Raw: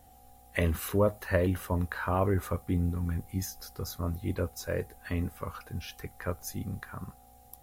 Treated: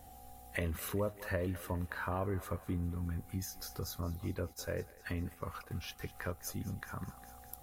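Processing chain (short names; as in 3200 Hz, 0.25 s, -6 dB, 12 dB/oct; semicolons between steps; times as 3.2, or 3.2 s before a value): thinning echo 0.203 s, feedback 65%, high-pass 770 Hz, level -15 dB; compressor 2:1, threshold -44 dBFS, peak gain reduction 13 dB; 4.53–6.01 gate -48 dBFS, range -7 dB; gain +2.5 dB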